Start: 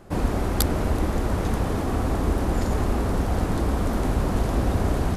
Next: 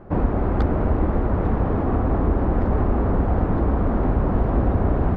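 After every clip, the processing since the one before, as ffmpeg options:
-filter_complex "[0:a]lowpass=1500,aemphasis=mode=reproduction:type=50kf,asplit=2[s0][s1];[s1]alimiter=limit=0.126:level=0:latency=1:release=489,volume=0.794[s2];[s0][s2]amix=inputs=2:normalize=0"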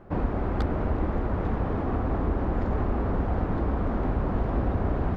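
-af "highshelf=f=2400:g=10,volume=0.473"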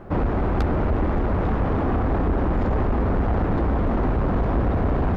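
-af "asoftclip=type=tanh:threshold=0.0596,volume=2.66"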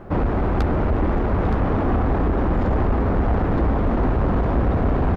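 -af "aecho=1:1:920:0.266,volume=1.19"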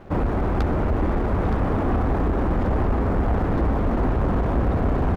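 -af "aeval=exprs='sgn(val(0))*max(abs(val(0))-0.00447,0)':c=same,volume=0.841"

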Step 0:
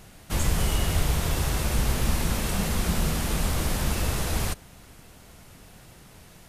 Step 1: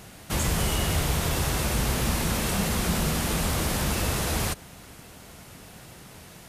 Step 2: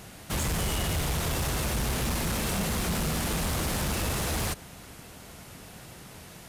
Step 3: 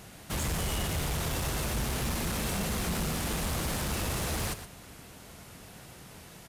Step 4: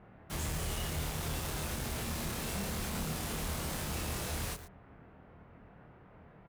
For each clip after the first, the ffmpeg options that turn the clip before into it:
-filter_complex "[0:a]highpass=f=82:p=1,asplit=2[s0][s1];[s1]alimiter=level_in=1.33:limit=0.0631:level=0:latency=1:release=80,volume=0.75,volume=0.708[s2];[s0][s2]amix=inputs=2:normalize=0"
-af "asoftclip=type=tanh:threshold=0.0668"
-af "aecho=1:1:117:0.266,volume=0.708"
-filter_complex "[0:a]acrossover=split=2000[s0][s1];[s1]acrusher=bits=6:mix=0:aa=0.000001[s2];[s0][s2]amix=inputs=2:normalize=0,asplit=2[s3][s4];[s4]adelay=26,volume=0.794[s5];[s3][s5]amix=inputs=2:normalize=0,volume=0.422"

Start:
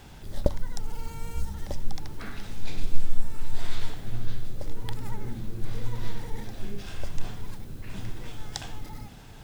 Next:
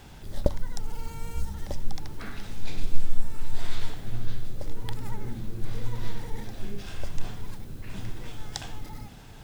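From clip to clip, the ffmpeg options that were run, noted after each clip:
-af anull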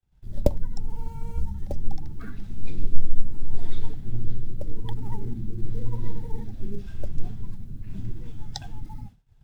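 -filter_complex "[0:a]afftdn=nr=17:nf=-34,agate=range=0.0224:threshold=0.0112:ratio=3:detection=peak,acrossover=split=150|360|2400[s0][s1][s2][s3];[s2]acrusher=bits=4:mode=log:mix=0:aa=0.000001[s4];[s0][s1][s4][s3]amix=inputs=4:normalize=0,volume=1.5"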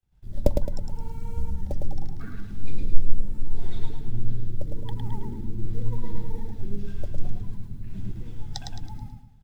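-af "aecho=1:1:108|216|324|432|540:0.631|0.246|0.096|0.0374|0.0146,volume=0.891"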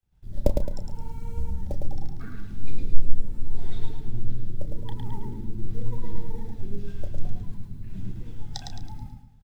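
-filter_complex "[0:a]asplit=2[s0][s1];[s1]adelay=32,volume=0.282[s2];[s0][s2]amix=inputs=2:normalize=0,volume=0.891"

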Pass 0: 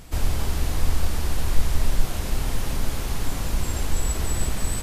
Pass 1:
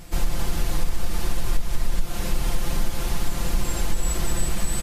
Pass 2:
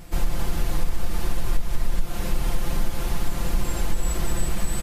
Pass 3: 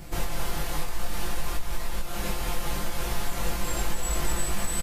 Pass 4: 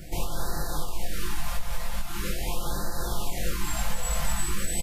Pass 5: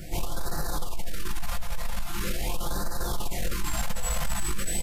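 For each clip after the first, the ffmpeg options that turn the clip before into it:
-af "aecho=1:1:5.8:0.77,acompressor=threshold=0.2:ratio=6"
-af "equalizer=f=6300:w=0.47:g=-4"
-filter_complex "[0:a]acrossover=split=480|1600[s0][s1][s2];[s0]alimiter=limit=0.0944:level=0:latency=1:release=476[s3];[s3][s1][s2]amix=inputs=3:normalize=0,asplit=2[s4][s5];[s5]adelay=20,volume=0.708[s6];[s4][s6]amix=inputs=2:normalize=0"
-af "afftfilt=real='re*(1-between(b*sr/1024,300*pow(2700/300,0.5+0.5*sin(2*PI*0.43*pts/sr))/1.41,300*pow(2700/300,0.5+0.5*sin(2*PI*0.43*pts/sr))*1.41))':imag='im*(1-between(b*sr/1024,300*pow(2700/300,0.5+0.5*sin(2*PI*0.43*pts/sr))/1.41,300*pow(2700/300,0.5+0.5*sin(2*PI*0.43*pts/sr))*1.41))':win_size=1024:overlap=0.75"
-af "asoftclip=type=tanh:threshold=0.0841,flanger=delay=8.4:depth=2.2:regen=-89:speed=0.88:shape=triangular,volume=2.24"

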